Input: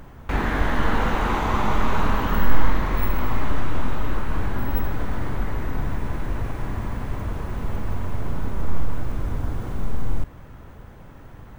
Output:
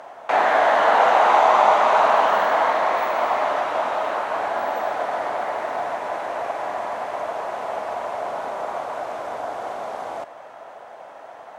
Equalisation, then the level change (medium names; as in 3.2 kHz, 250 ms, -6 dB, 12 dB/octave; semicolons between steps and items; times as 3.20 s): resonant high-pass 670 Hz, resonance Q 4.9; low-pass 8.4 kHz 12 dB/octave; +4.5 dB